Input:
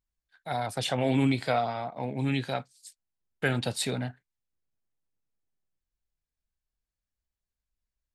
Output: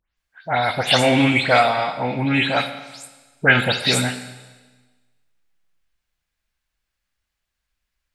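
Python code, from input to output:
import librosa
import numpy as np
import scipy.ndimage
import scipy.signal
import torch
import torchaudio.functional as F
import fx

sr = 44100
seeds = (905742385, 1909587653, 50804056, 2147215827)

y = fx.spec_delay(x, sr, highs='late', ms=168)
y = fx.peak_eq(y, sr, hz=2100.0, db=10.5, octaves=2.6)
y = fx.rev_schroeder(y, sr, rt60_s=1.3, comb_ms=32, drr_db=9.5)
y = y * 10.0 ** (7.0 / 20.0)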